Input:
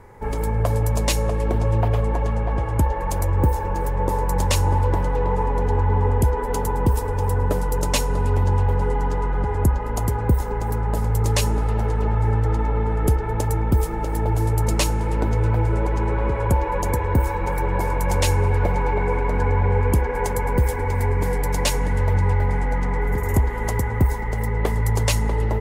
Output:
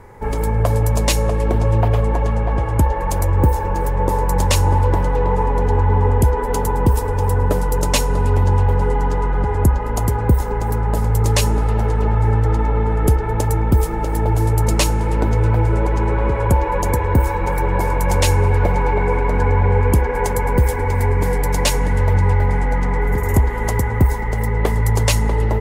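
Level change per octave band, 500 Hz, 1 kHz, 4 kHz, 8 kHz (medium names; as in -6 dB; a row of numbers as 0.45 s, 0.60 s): +4.0 dB, +4.0 dB, +4.0 dB, +4.0 dB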